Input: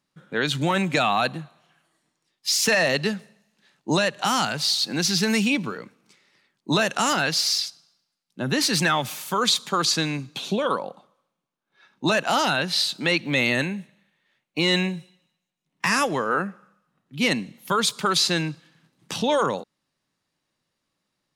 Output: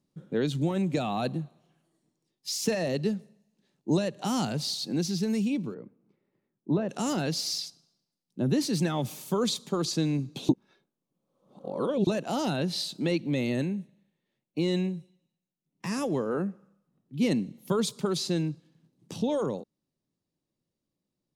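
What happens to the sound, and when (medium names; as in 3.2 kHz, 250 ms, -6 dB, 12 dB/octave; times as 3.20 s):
5.74–6.89 s: low-pass 1.6 kHz
10.49–12.07 s: reverse
whole clip: FFT filter 380 Hz 0 dB, 1.5 kHz -18 dB, 6.1 kHz -10 dB; gain riding 0.5 s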